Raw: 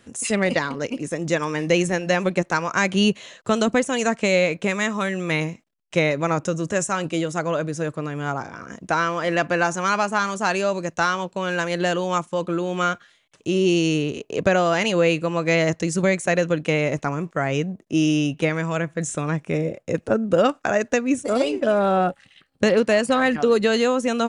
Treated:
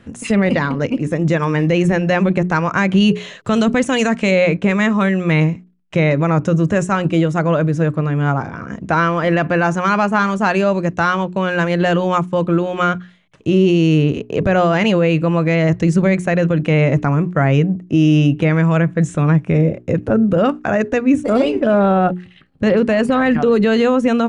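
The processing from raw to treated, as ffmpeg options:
-filter_complex "[0:a]asettb=1/sr,asplit=3[s0][s1][s2];[s0]atrim=end=3.004[s3];[s1]atrim=start=3:end=4.31,asetpts=PTS-STARTPTS,afade=t=in:d=0.004:c=qsin,afade=t=out:st=1.306:d=0.004:c=qsin,highshelf=f=2100:g=8[s4];[s2]atrim=start=4.306[s5];[s3][s4]acrossfade=d=0.004:c1=hsin:c2=qsin[s6];[s6][s5]acrossfade=d=0.004:c1=qsin:c2=hsin,bass=f=250:g=9,treble=f=4000:g=-13,bandreject=f=60:t=h:w=6,bandreject=f=120:t=h:w=6,bandreject=f=180:t=h:w=6,bandreject=f=240:t=h:w=6,bandreject=f=300:t=h:w=6,bandreject=f=360:t=h:w=6,bandreject=f=420:t=h:w=6,alimiter=limit=0.266:level=0:latency=1:release=35,volume=2"

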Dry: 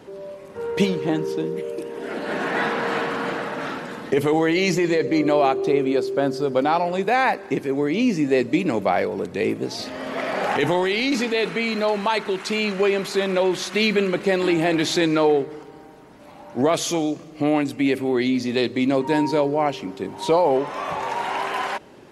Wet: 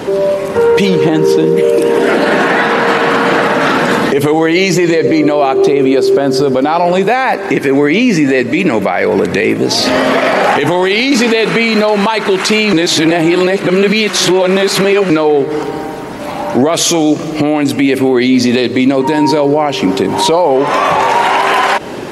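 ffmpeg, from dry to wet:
-filter_complex "[0:a]asettb=1/sr,asplit=3[s0][s1][s2];[s0]atrim=end=7.514[s3];[s1]atrim=start=7.51:end=9.57,asetpts=PTS-STARTPTS,afade=t=in:d=0.004:c=qsin,afade=t=out:st=2.056:d=0.004:c=qsin,equalizer=f=1900:w=1.5:g=7[s4];[s2]atrim=start=9.566[s5];[s3][s4]acrossfade=d=0.004:c1=hsin:c2=qsin[s6];[s6][s5]acrossfade=d=0.004:c1=qsin:c2=hsin,asplit=3[s7][s8][s9];[s7]atrim=end=12.732[s10];[s8]atrim=start=12.728:end=15.102,asetpts=PTS-STARTPTS,areverse[s11];[s9]atrim=start=15.098[s12];[s10][s11]acrossfade=d=0.004:c1=hsin:c2=hsin[s13];[s13][s12]acrossfade=d=0.004:c1=hsin:c2=hsin,lowshelf=f=120:g=-4.5,acompressor=threshold=0.0398:ratio=5,alimiter=level_in=17.8:limit=0.891:release=50:level=0:latency=1,volume=0.891"

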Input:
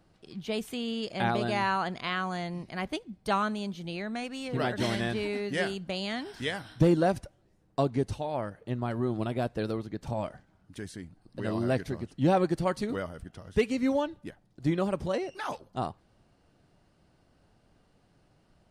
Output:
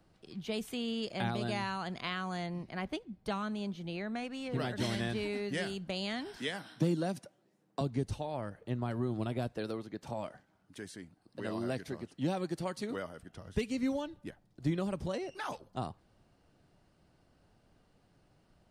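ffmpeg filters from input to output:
-filter_complex "[0:a]asettb=1/sr,asplit=3[s0][s1][s2];[s0]atrim=end=2.464[s3];[s1]atrim=start=2.46:end=4.52,asetpts=PTS-STARTPTS,afade=t=in:d=0.004:c=qsin,afade=t=out:st=2.056:d=0.004:c=qsin,highshelf=f=4500:g=-7.5[s4];[s2]atrim=start=4.516[s5];[s3][s4]acrossfade=d=0.004:c1=hsin:c2=qsin[s6];[s6][s5]acrossfade=d=0.004:c1=qsin:c2=hsin,asettb=1/sr,asplit=3[s7][s8][s9];[s7]atrim=end=6.374[s10];[s8]atrim=start=6.37:end=7.81,asetpts=PTS-STARTPTS,afade=t=in:d=0.004:c=qsin,afade=t=out:st=1.436:d=0.004:c=qsin,highpass=f=160:w=0.5412,highpass=f=160:w=1.3066[s11];[s9]atrim=start=7.806[s12];[s10][s11]acrossfade=d=0.004:c1=hsin:c2=qsin[s13];[s13][s12]acrossfade=d=0.004:c1=qsin:c2=hsin,asettb=1/sr,asplit=3[s14][s15][s16];[s14]atrim=end=9.524[s17];[s15]atrim=start=9.52:end=13.31,asetpts=PTS-STARTPTS,afade=t=in:d=0.004:c=qsin,afade=t=out:st=3.786:d=0.004:c=qsin,highpass=f=250:p=1[s18];[s16]atrim=start=13.306[s19];[s17][s18]acrossfade=d=0.004:c1=hsin:c2=qsin[s20];[s20][s19]acrossfade=d=0.004:c1=qsin:c2=hsin,acrossover=split=240|3000[s21][s22][s23];[s22]acompressor=threshold=0.0251:ratio=6[s24];[s21][s24][s23]amix=inputs=3:normalize=0,volume=0.75"

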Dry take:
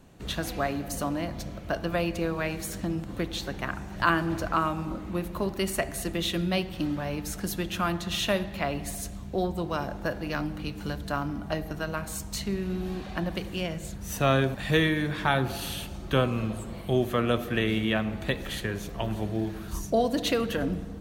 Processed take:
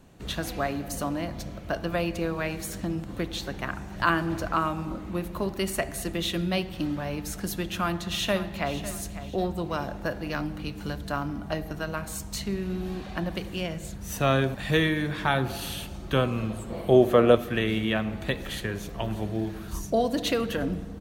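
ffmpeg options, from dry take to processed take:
-filter_complex "[0:a]asplit=2[s0][s1];[s1]afade=t=in:st=7.66:d=0.01,afade=t=out:st=8.75:d=0.01,aecho=0:1:550|1100|1650:0.211349|0.0739721|0.0258902[s2];[s0][s2]amix=inputs=2:normalize=0,asettb=1/sr,asplit=3[s3][s4][s5];[s3]atrim=end=16.704[s6];[s4]atrim=start=16.7:end=17.35,asetpts=PTS-STARTPTS,afade=t=in:d=0.004:c=qsin,afade=t=out:st=0.646:d=0.004:c=qsin,equalizer=f=520:w=0.76:g=10.5[s7];[s5]atrim=start=17.346[s8];[s6][s7]acrossfade=d=0.004:c1=hsin:c2=qsin[s9];[s9][s8]acrossfade=d=0.004:c1=qsin:c2=hsin"

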